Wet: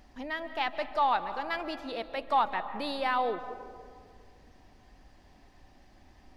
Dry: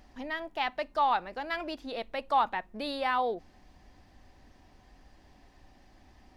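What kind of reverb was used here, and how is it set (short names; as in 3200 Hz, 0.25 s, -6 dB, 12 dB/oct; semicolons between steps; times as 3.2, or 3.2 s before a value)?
digital reverb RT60 2 s, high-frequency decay 0.35×, pre-delay 0.11 s, DRR 11 dB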